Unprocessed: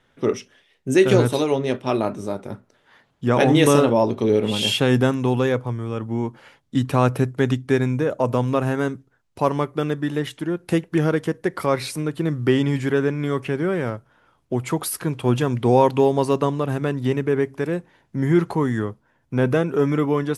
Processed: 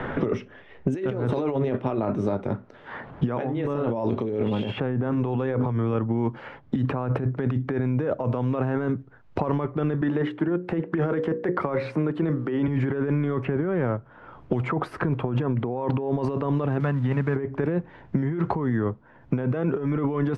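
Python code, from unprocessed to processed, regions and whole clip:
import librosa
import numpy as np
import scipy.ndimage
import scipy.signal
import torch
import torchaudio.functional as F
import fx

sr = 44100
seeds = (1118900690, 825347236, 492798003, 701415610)

y = fx.chain(x, sr, fx.hum_notches(base_hz=50, count=8),
    fx.env_flatten(amount_pct=50), at=(5.07, 5.94))
y = fx.chain(y, sr, fx.highpass(hz=200.0, slope=12),
    fx.hum_notches(base_hz=60, count=9), at=(10.01, 12.68))
y = fx.chain(y, sr, fx.crossing_spikes(level_db=-27.0),
    fx.peak_eq(hz=370.0, db=-14.0, octaves=0.96), at=(16.8, 17.36))
y = fx.over_compress(y, sr, threshold_db=-26.0, ratio=-1.0)
y = scipy.signal.sosfilt(scipy.signal.butter(2, 1600.0, 'lowpass', fs=sr, output='sos'), y)
y = fx.band_squash(y, sr, depth_pct=100)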